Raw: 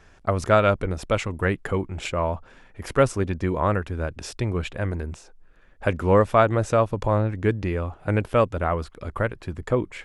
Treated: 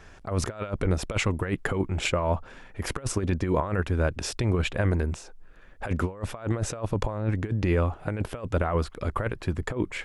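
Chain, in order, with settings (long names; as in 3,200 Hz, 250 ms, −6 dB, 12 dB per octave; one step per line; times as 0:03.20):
compressor whose output falls as the input rises −25 dBFS, ratio −0.5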